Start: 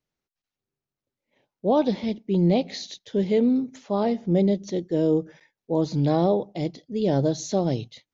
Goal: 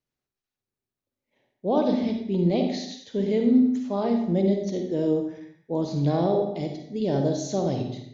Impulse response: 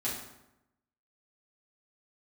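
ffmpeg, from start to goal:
-filter_complex "[0:a]asplit=2[s0][s1];[1:a]atrim=start_sample=2205,afade=t=out:st=0.42:d=0.01,atrim=end_sample=18963,adelay=47[s2];[s1][s2]afir=irnorm=-1:irlink=0,volume=0.398[s3];[s0][s3]amix=inputs=2:normalize=0,volume=0.668"

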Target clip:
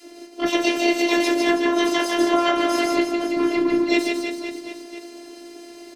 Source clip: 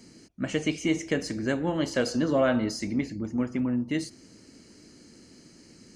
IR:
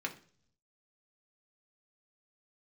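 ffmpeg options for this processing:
-filter_complex "[1:a]atrim=start_sample=2205,atrim=end_sample=4410,asetrate=61740,aresample=44100[s0];[0:a][s0]afir=irnorm=-1:irlink=0,adynamicequalizer=threshold=0.00891:dfrequency=390:dqfactor=1.1:tfrequency=390:tqfactor=1.1:attack=5:release=100:ratio=0.375:range=2.5:mode=cutabove:tftype=bell,asplit=2[s1][s2];[s2]adynamicsmooth=sensitivity=2:basefreq=6400,volume=1.26[s3];[s1][s3]amix=inputs=2:normalize=0,asplit=4[s4][s5][s6][s7];[s5]asetrate=33038,aresample=44100,atempo=1.33484,volume=0.178[s8];[s6]asetrate=55563,aresample=44100,atempo=0.793701,volume=0.631[s9];[s7]asetrate=88200,aresample=44100,atempo=0.5,volume=0.501[s10];[s4][s8][s9][s10]amix=inputs=4:normalize=0,aecho=1:1:150|322.5|520.9|749|1011:0.631|0.398|0.251|0.158|0.1,alimiter=limit=0.266:level=0:latency=1:release=473,afftfilt=real='hypot(re,im)*cos(PI*b)':imag='0':win_size=512:overlap=0.75,lowshelf=f=74:g=-11.5,volume=2.24"

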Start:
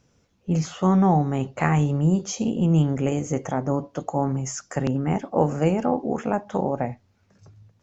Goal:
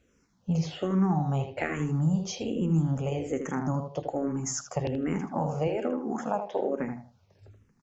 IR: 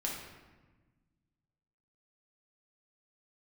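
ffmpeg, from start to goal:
-filter_complex "[0:a]asettb=1/sr,asplit=3[s0][s1][s2];[s0]atrim=end=5.674[s3];[s1]atrim=start=5.67:end=6.8,asetpts=PTS-STARTPTS,afade=t=in:d=0.004:c=qsin,afade=t=out:st=1.126:d=0.004:c=qsin,highpass=260[s4];[s2]atrim=start=6.796[s5];[s3][s4]acrossfade=d=0.004:c1=hsin:c2=qsin[s6];[s6][s5]acrossfade=d=0.004:c1=qsin:c2=hsin,acompressor=threshold=0.0891:ratio=6,asplit=2[s7][s8];[s8]adelay=79,lowpass=f=4200:p=1,volume=0.422,asplit=2[s9][s10];[s10]adelay=79,lowpass=f=4200:p=1,volume=0.25,asplit=2[s11][s12];[s12]adelay=79,lowpass=f=4200:p=1,volume=0.25[s13];[s7][s9][s11][s13]amix=inputs=4:normalize=0,asplit=2[s14][s15];[s15]afreqshift=-1.2[s16];[s14][s16]amix=inputs=2:normalize=1"

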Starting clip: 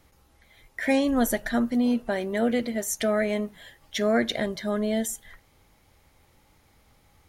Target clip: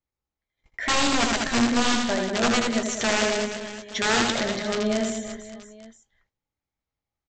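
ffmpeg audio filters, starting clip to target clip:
-filter_complex "[0:a]agate=range=0.0282:threshold=0.00282:ratio=16:detection=peak,aresample=16000,aeval=exprs='(mod(7.5*val(0)+1,2)-1)/7.5':c=same,aresample=44100,asplit=2[s0][s1];[s1]adelay=17,volume=0.266[s2];[s0][s2]amix=inputs=2:normalize=0,aecho=1:1:80|192|348.8|568.3|875.6:0.631|0.398|0.251|0.158|0.1"

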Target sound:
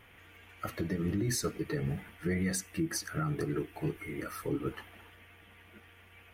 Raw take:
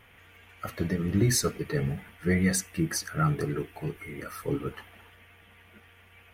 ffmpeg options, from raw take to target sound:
-af "equalizer=f=320:t=o:w=0.27:g=7,alimiter=limit=0.0841:level=0:latency=1:release=197,volume=0.841"

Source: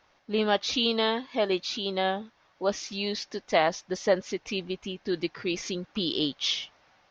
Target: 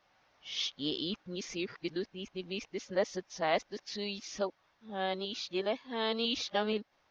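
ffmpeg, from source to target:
-af "areverse,volume=0.447"

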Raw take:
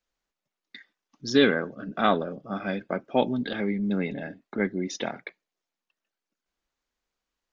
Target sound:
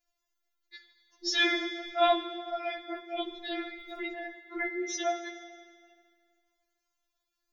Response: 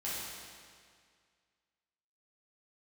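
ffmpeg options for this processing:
-filter_complex "[0:a]bandreject=f=50:t=h:w=6,bandreject=f=100:t=h:w=6,bandreject=f=150:t=h:w=6,bandreject=f=200:t=h:w=6,bandreject=f=250:t=h:w=6,bandreject=f=300:t=h:w=6,bandreject=f=350:t=h:w=6,aexciter=amount=1.4:drive=3.9:freq=5200,asplit=2[s0][s1];[1:a]atrim=start_sample=2205[s2];[s1][s2]afir=irnorm=-1:irlink=0,volume=0.299[s3];[s0][s3]amix=inputs=2:normalize=0,afftfilt=real='re*4*eq(mod(b,16),0)':imag='im*4*eq(mod(b,16),0)':win_size=2048:overlap=0.75"

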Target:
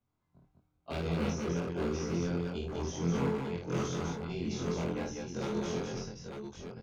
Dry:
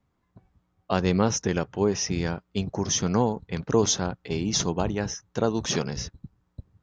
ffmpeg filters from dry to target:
-filter_complex "[0:a]afftfilt=real='re':imag='-im':win_size=2048:overlap=0.75,bandreject=f=50:t=h:w=6,bandreject=f=100:t=h:w=6,bandreject=f=150:t=h:w=6,adynamicequalizer=threshold=0.00501:dfrequency=420:dqfactor=2.6:tfrequency=420:tqfactor=2.6:attack=5:release=100:ratio=0.375:range=2:mode=boostabove:tftype=bell,acrossover=split=300|2100[s0][s1][s2];[s1]aeval=exprs='0.0398*(abs(mod(val(0)/0.0398+3,4)-2)-1)':c=same[s3];[s2]acompressor=threshold=0.00708:ratio=6[s4];[s0][s3][s4]amix=inputs=3:normalize=0,bandreject=f=1800:w=7.9,aecho=1:1:53|202|895:0.596|0.668|0.447,volume=0.531"

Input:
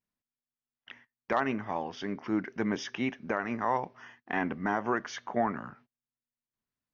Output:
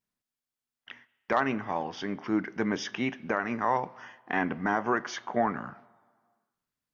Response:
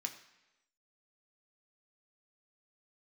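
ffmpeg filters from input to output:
-filter_complex "[0:a]asplit=2[s0][s1];[1:a]atrim=start_sample=2205,asetrate=26460,aresample=44100[s2];[s1][s2]afir=irnorm=-1:irlink=0,volume=0.224[s3];[s0][s3]amix=inputs=2:normalize=0,volume=1.12"

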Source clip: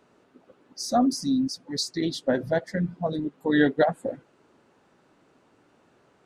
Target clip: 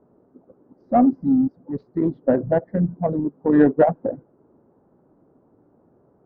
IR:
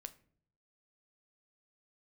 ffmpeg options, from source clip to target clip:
-af "adynamicsmooth=sensitivity=0.5:basefreq=810,lowpass=1200,volume=2.11"

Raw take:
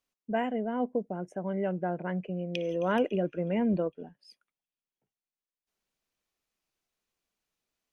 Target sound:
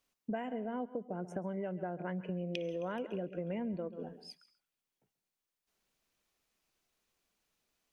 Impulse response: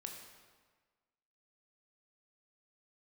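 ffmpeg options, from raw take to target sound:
-filter_complex "[0:a]asplit=2[s0][s1];[1:a]atrim=start_sample=2205,afade=t=out:st=0.19:d=0.01,atrim=end_sample=8820,adelay=135[s2];[s1][s2]afir=irnorm=-1:irlink=0,volume=0.237[s3];[s0][s3]amix=inputs=2:normalize=0,acompressor=threshold=0.0112:ratio=12,volume=1.68"

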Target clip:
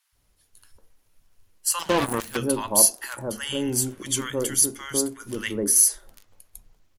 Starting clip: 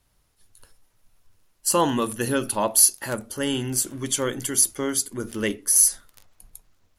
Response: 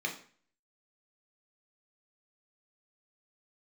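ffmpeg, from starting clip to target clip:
-filter_complex "[0:a]acrossover=split=150|1000[s0][s1][s2];[s0]adelay=120[s3];[s1]adelay=150[s4];[s3][s4][s2]amix=inputs=3:normalize=0,asplit=2[s5][s6];[1:a]atrim=start_sample=2205,asetrate=66150,aresample=44100[s7];[s6][s7]afir=irnorm=-1:irlink=0,volume=0.119[s8];[s5][s8]amix=inputs=2:normalize=0,asettb=1/sr,asplit=3[s9][s10][s11];[s9]atrim=end=1.794[s12];[s10]atrim=start=1.79:end=2.37,asetpts=PTS-STARTPTS,afade=t=in:d=0.004:c=qsin,afade=t=out:st=0.576:d=0.004:c=qsin,aeval=exprs='0.251*(cos(1*acos(clip(val(0)/0.251,-1,1)))-cos(1*PI/2))+0.0562*(cos(7*acos(clip(val(0)/0.251,-1,1)))-cos(7*PI/2))':c=same[s13];[s11]atrim=start=2.366[s14];[s12][s13]acrossfade=d=0.004:c1=hsin:c2=qsin[s15];[s15][s14]acrossfade=d=0.004:c1=qsin:c2=hsin"

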